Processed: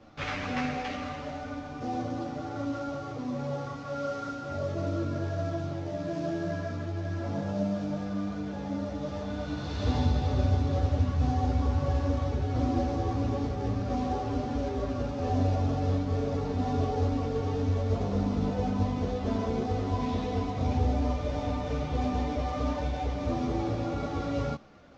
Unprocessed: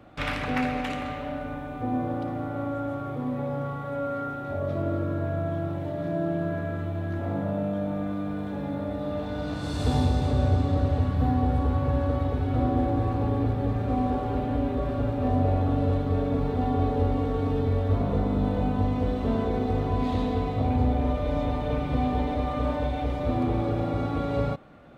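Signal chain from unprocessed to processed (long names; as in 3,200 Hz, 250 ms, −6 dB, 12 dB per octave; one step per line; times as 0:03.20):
variable-slope delta modulation 32 kbit/s
string-ensemble chorus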